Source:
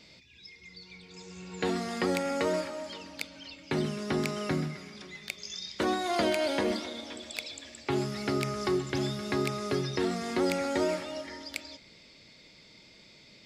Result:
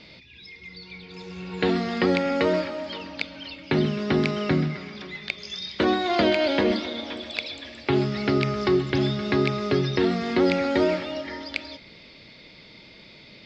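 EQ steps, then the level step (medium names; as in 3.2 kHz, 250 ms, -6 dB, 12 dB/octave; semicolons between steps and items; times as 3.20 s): low-pass 4.4 kHz 24 dB/octave; dynamic bell 950 Hz, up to -4 dB, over -42 dBFS, Q 0.85; +8.5 dB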